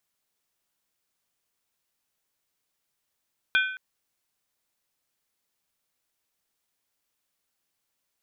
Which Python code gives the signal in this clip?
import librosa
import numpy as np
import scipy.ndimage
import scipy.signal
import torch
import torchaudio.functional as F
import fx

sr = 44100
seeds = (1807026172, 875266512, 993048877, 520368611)

y = fx.strike_skin(sr, length_s=0.22, level_db=-18, hz=1520.0, decay_s=0.65, tilt_db=4.0, modes=4)